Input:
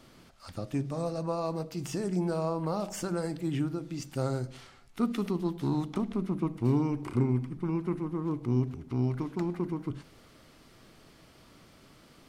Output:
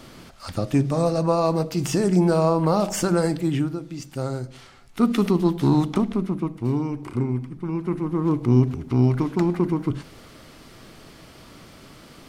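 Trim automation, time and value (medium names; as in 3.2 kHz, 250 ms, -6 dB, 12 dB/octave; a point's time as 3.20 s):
3.28 s +11.5 dB
3.88 s +3 dB
4.51 s +3 dB
5.19 s +11 dB
5.88 s +11 dB
6.58 s +2.5 dB
7.63 s +2.5 dB
8.26 s +10.5 dB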